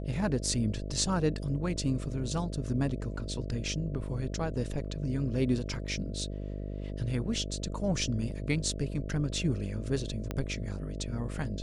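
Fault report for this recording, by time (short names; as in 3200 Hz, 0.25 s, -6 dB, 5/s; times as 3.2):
buzz 50 Hz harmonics 13 -37 dBFS
10.31 pop -19 dBFS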